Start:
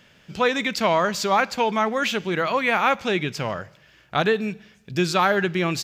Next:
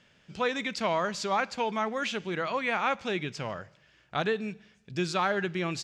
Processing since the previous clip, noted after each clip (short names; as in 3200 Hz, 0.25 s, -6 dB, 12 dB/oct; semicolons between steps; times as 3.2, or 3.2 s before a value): LPF 9500 Hz 24 dB/oct; gain -8 dB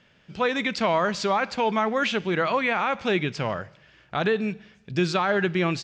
AGC gain up to 4.5 dB; limiter -16.5 dBFS, peak gain reduction 6.5 dB; air absorption 90 m; gain +3.5 dB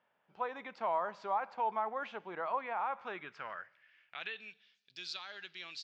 band-pass sweep 880 Hz -> 4200 Hz, 2.83–4.83; gain -6.5 dB